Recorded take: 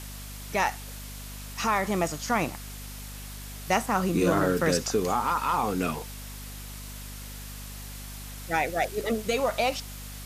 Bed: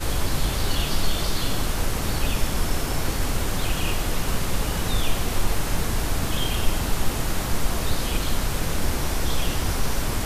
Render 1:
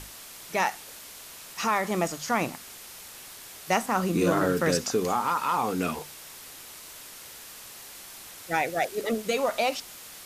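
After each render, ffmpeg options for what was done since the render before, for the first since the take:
-af "bandreject=f=50:t=h:w=6,bandreject=f=100:t=h:w=6,bandreject=f=150:t=h:w=6,bandreject=f=200:t=h:w=6,bandreject=f=250:t=h:w=6"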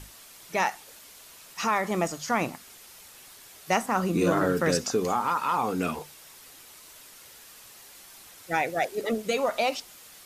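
-af "afftdn=nr=6:nf=-45"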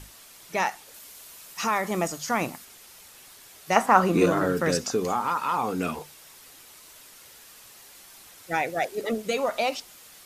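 -filter_complex "[0:a]asettb=1/sr,asplit=3[a][b][c];[a]atrim=end=0.944[d];[b]atrim=start=0.94:end=2.65,asetpts=PTS-STARTPTS,afade=t=in:d=0.004:c=qsin,afade=t=out:st=1.706:d=0.004:c=qsin,highshelf=f=8k:g=6.5[e];[c]atrim=start=2.646[f];[d][e]acrossfade=d=0.004:c1=hsin:c2=qsin[g];[g][f]acrossfade=d=0.004:c1=qsin:c2=hsin,asettb=1/sr,asplit=3[h][i][j];[h]atrim=end=3.764[k];[i]atrim=start=3.76:end=4.26,asetpts=PTS-STARTPTS,afade=t=in:d=0.004:c=qsin,afade=t=out:st=0.496:d=0.004:c=qsin,equalizer=f=1k:t=o:w=2.8:g=10[l];[j]atrim=start=4.256[m];[k][l]acrossfade=d=0.004:c1=hsin:c2=qsin[n];[n][m]acrossfade=d=0.004:c1=qsin:c2=hsin"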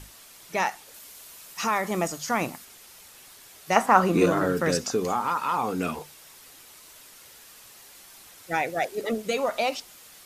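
-af anull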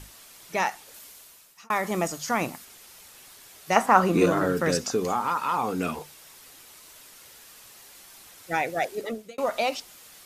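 -filter_complex "[0:a]asplit=3[a][b][c];[a]atrim=end=1.7,asetpts=PTS-STARTPTS,afade=t=out:st=1.01:d=0.69[d];[b]atrim=start=1.7:end=9.38,asetpts=PTS-STARTPTS,afade=t=in:d=0.004:c=hsin,afade=t=out:st=7.22:d=0.46[e];[c]atrim=start=9.38,asetpts=PTS-STARTPTS,afade=t=in:d=0.004:c=hsin[f];[d][e][f]concat=n=3:v=0:a=1"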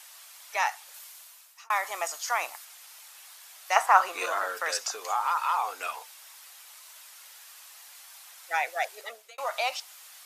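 -af "highpass=f=720:w=0.5412,highpass=f=720:w=1.3066"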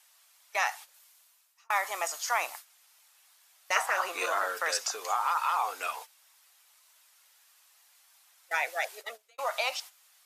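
-af "agate=range=-13dB:threshold=-43dB:ratio=16:detection=peak,afftfilt=real='re*lt(hypot(re,im),0.398)':imag='im*lt(hypot(re,im),0.398)':win_size=1024:overlap=0.75"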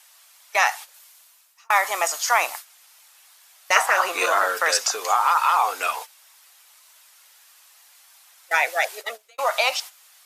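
-af "volume=9.5dB"

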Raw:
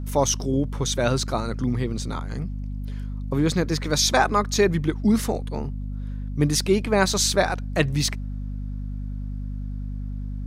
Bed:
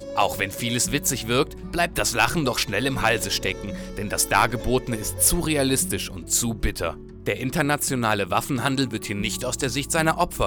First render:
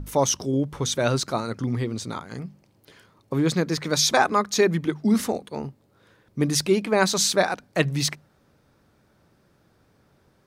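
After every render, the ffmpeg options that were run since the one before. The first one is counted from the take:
-af "bandreject=f=50:t=h:w=6,bandreject=f=100:t=h:w=6,bandreject=f=150:t=h:w=6,bandreject=f=200:t=h:w=6,bandreject=f=250:t=h:w=6"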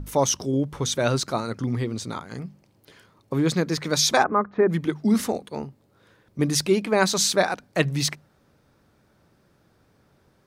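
-filter_complex "[0:a]asplit=3[a][b][c];[a]afade=t=out:st=4.22:d=0.02[d];[b]lowpass=f=1.6k:w=0.5412,lowpass=f=1.6k:w=1.3066,afade=t=in:st=4.22:d=0.02,afade=t=out:st=4.68:d=0.02[e];[c]afade=t=in:st=4.68:d=0.02[f];[d][e][f]amix=inputs=3:normalize=0,asettb=1/sr,asplit=3[g][h][i];[g]atrim=end=5.644[j];[h]atrim=start=5.64:end=6.39,asetpts=PTS-STARTPTS,afade=t=in:d=0.004:c=qsin,afade=t=out:st=0.746:d=0.004:c=qsin,acompressor=threshold=-36dB:ratio=2.5:attack=3.2:release=140:knee=1:detection=peak[k];[i]atrim=start=6.386[l];[j][k]acrossfade=d=0.004:c1=hsin:c2=qsin[m];[m][l]acrossfade=d=0.004:c1=qsin:c2=hsin"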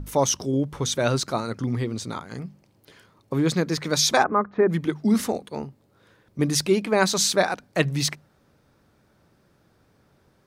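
-af anull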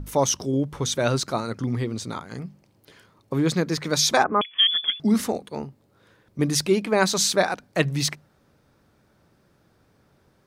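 -filter_complex "[0:a]asettb=1/sr,asplit=3[a][b][c];[a]atrim=end=4.414[d];[b]atrim=start=4.41:end=5,asetpts=PTS-STARTPTS,afade=t=in:d=0.004:c=qsin,afade=t=out:st=0.586:d=0.004:c=qsin,lowpass=f=3.1k:t=q:w=0.5098,lowpass=f=3.1k:t=q:w=0.6013,lowpass=f=3.1k:t=q:w=0.9,lowpass=f=3.1k:t=q:w=2.563,afreqshift=-3600[e];[c]atrim=start=4.996[f];[d][e]acrossfade=d=0.004:c1=hsin:c2=qsin[g];[g][f]acrossfade=d=0.004:c1=qsin:c2=hsin"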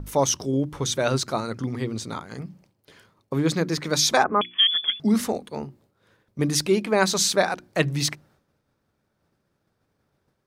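-af "agate=range=-33dB:threshold=-53dB:ratio=3:detection=peak,bandreject=f=60:t=h:w=6,bandreject=f=120:t=h:w=6,bandreject=f=180:t=h:w=6,bandreject=f=240:t=h:w=6,bandreject=f=300:t=h:w=6,bandreject=f=360:t=h:w=6"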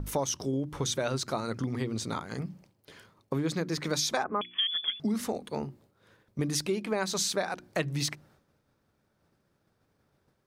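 -af "acompressor=threshold=-28dB:ratio=4"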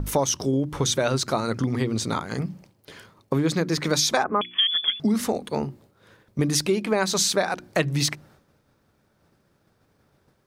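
-af "volume=7.5dB"

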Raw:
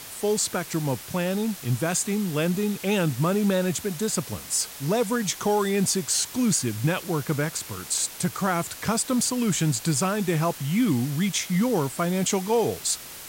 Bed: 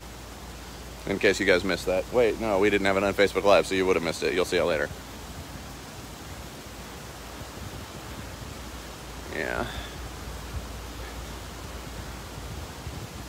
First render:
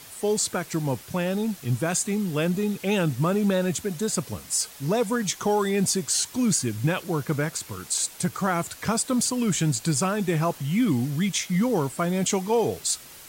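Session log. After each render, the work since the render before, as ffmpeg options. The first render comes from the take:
-af "afftdn=nr=6:nf=-41"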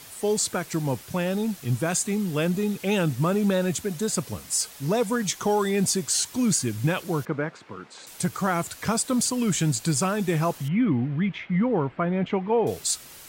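-filter_complex "[0:a]asettb=1/sr,asplit=3[a][b][c];[a]atrim=end=7.254[d];[b]atrim=start=7.25:end=8.07,asetpts=PTS-STARTPTS,afade=t=in:d=0.004:c=qsin,afade=t=out:st=0.816:d=0.004:c=qsin,highpass=190,lowpass=2k[e];[c]atrim=start=8.066[f];[d][e]acrossfade=d=0.004:c1=hsin:c2=qsin[g];[g][f]acrossfade=d=0.004:c1=qsin:c2=hsin,asettb=1/sr,asplit=3[h][i][j];[h]atrim=end=10.684[k];[i]atrim=start=10.68:end=12.67,asetpts=PTS-STARTPTS,afade=t=in:d=0.004:c=qsin,afade=t=out:st=1.986:d=0.004:c=qsin,lowpass=f=2.5k:w=0.5412,lowpass=f=2.5k:w=1.3066[l];[j]atrim=start=12.666[m];[k][l]acrossfade=d=0.004:c1=hsin:c2=qsin[n];[n][m]acrossfade=d=0.004:c1=qsin:c2=hsin"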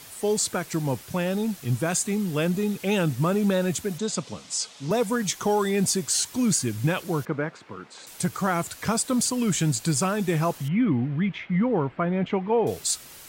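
-filter_complex "[0:a]asettb=1/sr,asplit=3[a][b][c];[a]atrim=end=3.984[d];[b]atrim=start=3.98:end=4.91,asetpts=PTS-STARTPTS,afade=t=in:d=0.004:c=qsin,afade=t=out:st=0.926:d=0.004:c=qsin,highpass=160,equalizer=f=370:t=q:w=4:g=-4,equalizer=f=1.7k:t=q:w=4:g=-5,equalizer=f=3.5k:t=q:w=4:g=4,lowpass=f=7.4k:w=0.5412,lowpass=f=7.4k:w=1.3066[e];[c]atrim=start=4.906[f];[d][e]acrossfade=d=0.004:c1=hsin:c2=qsin[g];[g][f]acrossfade=d=0.004:c1=qsin:c2=hsin"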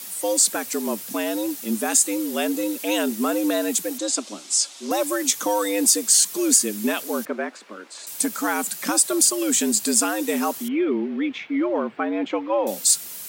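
-af "afreqshift=100,crystalizer=i=2:c=0"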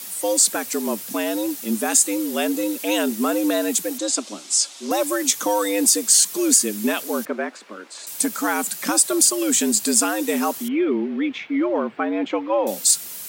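-af "volume=1.5dB,alimiter=limit=-3dB:level=0:latency=1"

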